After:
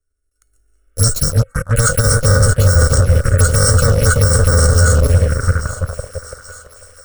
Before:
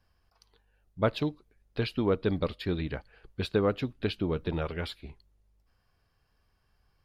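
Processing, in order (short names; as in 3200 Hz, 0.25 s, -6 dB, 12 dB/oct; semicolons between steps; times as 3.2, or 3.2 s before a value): FFT order left unsorted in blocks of 128 samples; bell 310 Hz +14 dB 0.83 oct; resonator 730 Hz, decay 0.23 s, harmonics all, mix 80%; darkening echo 0.335 s, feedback 73%, low-pass 1100 Hz, level -6 dB; spectral repair 0.79–1.57, 460–3700 Hz both; in parallel at -7 dB: fuzz box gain 48 dB, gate -54 dBFS; on the sum: AGC gain up to 15.5 dB; envelope phaser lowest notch 150 Hz, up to 2600 Hz, full sweep at -7.5 dBFS; EQ curve 100 Hz 0 dB, 200 Hz -19 dB, 330 Hz -18 dB, 540 Hz +1 dB, 850 Hz -18 dB, 1400 Hz +7 dB, 2700 Hz -16 dB, 4700 Hz -12 dB, 8700 Hz +1 dB, 13000 Hz -16 dB; thinning echo 0.832 s, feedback 53%, high-pass 680 Hz, level -15.5 dB; maximiser +9.5 dB; gain -1 dB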